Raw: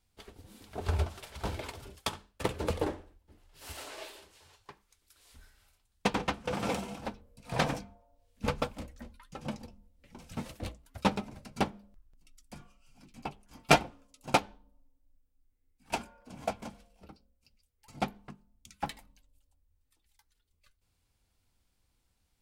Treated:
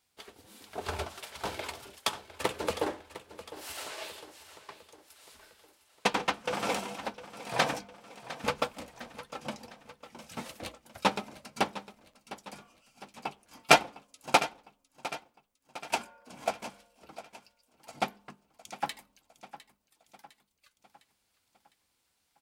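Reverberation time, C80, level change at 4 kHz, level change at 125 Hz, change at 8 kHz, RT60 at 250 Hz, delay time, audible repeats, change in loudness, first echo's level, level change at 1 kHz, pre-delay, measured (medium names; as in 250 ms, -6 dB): no reverb, no reverb, +4.5 dB, -8.5 dB, +4.5 dB, no reverb, 706 ms, 4, +2.0 dB, -15.0 dB, +3.0 dB, no reverb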